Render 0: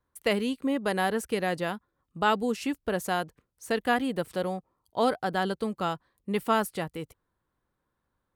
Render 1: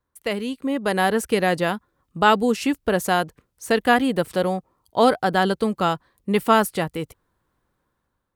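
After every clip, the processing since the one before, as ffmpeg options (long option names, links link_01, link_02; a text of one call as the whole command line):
ffmpeg -i in.wav -af "dynaudnorm=framelen=340:gausssize=5:maxgain=9dB" out.wav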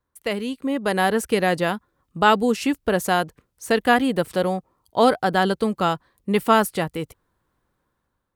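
ffmpeg -i in.wav -af anull out.wav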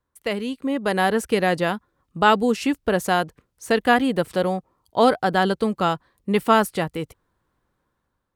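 ffmpeg -i in.wav -af "highshelf=frequency=9800:gain=-5.5" out.wav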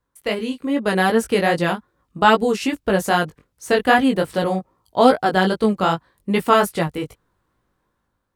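ffmpeg -i in.wav -af "flanger=delay=17.5:depth=3.6:speed=2.5,volume=5.5dB" out.wav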